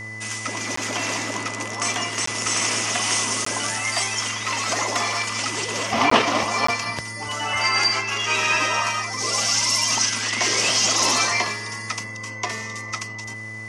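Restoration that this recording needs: de-hum 109.1 Hz, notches 14; notch 2000 Hz, Q 30; interpolate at 0.76/2.26/3.45/6.1/6.67, 14 ms

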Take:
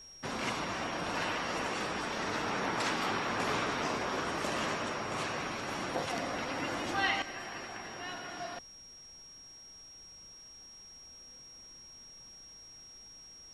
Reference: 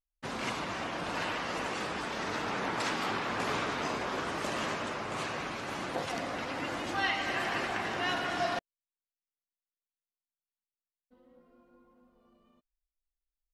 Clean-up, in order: notch 5600 Hz, Q 30; expander -45 dBFS, range -21 dB; gain correction +10 dB, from 7.22

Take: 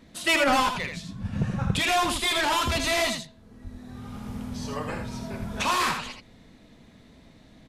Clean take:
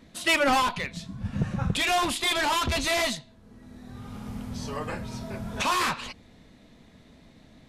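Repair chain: de-plosive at 2.12/3.63/5.39; inverse comb 80 ms -6.5 dB

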